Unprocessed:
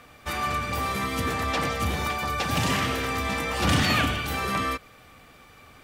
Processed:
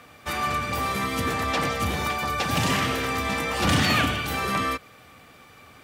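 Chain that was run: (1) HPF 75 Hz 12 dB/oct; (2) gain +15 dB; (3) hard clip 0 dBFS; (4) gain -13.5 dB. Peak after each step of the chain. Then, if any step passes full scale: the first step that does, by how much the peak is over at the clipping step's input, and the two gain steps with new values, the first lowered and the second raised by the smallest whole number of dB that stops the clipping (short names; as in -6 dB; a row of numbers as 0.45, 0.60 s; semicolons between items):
-10.5, +4.5, 0.0, -13.5 dBFS; step 2, 4.5 dB; step 2 +10 dB, step 4 -8.5 dB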